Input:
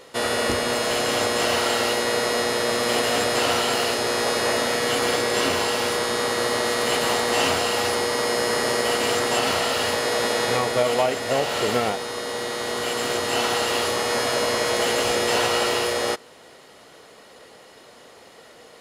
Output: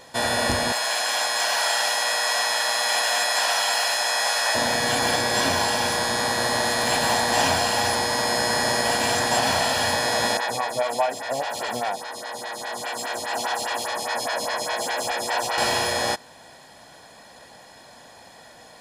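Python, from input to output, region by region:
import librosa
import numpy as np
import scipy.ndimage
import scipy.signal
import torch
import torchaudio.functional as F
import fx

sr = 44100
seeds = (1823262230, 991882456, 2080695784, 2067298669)

y = fx.chain(x, sr, fx.highpass(hz=820.0, slope=12),
    fx.echo_single(ms=877, db=-6.5), at=(0.72, 4.55))
y = fx.chain(y, sr, fx.low_shelf(hz=340.0, db=-10.0),
    fx.stagger_phaser(hz=4.9), at=(10.37, 15.58))
y = fx.notch(y, sr, hz=2700.0, q=9.8)
y = y + 0.64 * np.pad(y, (int(1.2 * sr / 1000.0), 0))[:len(y)]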